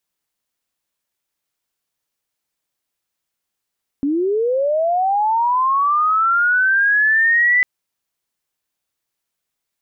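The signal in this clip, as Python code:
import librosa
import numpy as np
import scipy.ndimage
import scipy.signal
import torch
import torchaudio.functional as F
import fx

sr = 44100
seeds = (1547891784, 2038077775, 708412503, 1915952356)

y = fx.chirp(sr, length_s=3.6, from_hz=270.0, to_hz=2000.0, law='linear', from_db=-15.5, to_db=-11.0)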